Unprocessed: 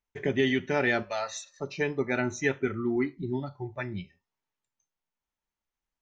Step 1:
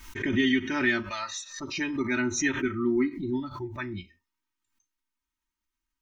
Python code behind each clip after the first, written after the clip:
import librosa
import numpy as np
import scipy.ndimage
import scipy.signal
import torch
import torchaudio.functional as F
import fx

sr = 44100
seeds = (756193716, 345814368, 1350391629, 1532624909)

y = fx.band_shelf(x, sr, hz=590.0, db=-15.0, octaves=1.1)
y = y + 0.84 * np.pad(y, (int(3.2 * sr / 1000.0), 0))[:len(y)]
y = fx.pre_swell(y, sr, db_per_s=84.0)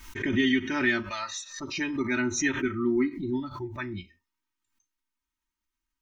y = x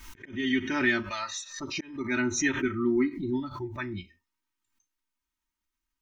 y = fx.auto_swell(x, sr, attack_ms=361.0)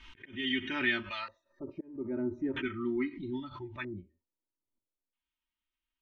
y = fx.filter_lfo_lowpass(x, sr, shape='square', hz=0.39, low_hz=530.0, high_hz=3100.0, q=3.2)
y = y * librosa.db_to_amplitude(-7.5)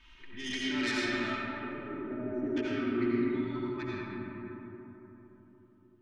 y = fx.self_delay(x, sr, depth_ms=0.14)
y = fx.rev_freeverb(y, sr, rt60_s=4.2, hf_ratio=0.35, predelay_ms=45, drr_db=-7.0)
y = y * librosa.db_to_amplitude(-5.5)